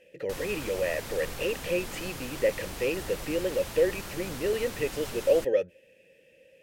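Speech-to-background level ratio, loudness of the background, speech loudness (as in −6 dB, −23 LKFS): 9.0 dB, −39.0 LKFS, −30.0 LKFS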